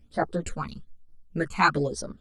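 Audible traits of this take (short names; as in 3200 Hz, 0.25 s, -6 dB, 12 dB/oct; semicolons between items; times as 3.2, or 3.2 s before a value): phasing stages 12, 1.1 Hz, lowest notch 550–2700 Hz; tremolo saw down 4.6 Hz, depth 60%; a shimmering, thickened sound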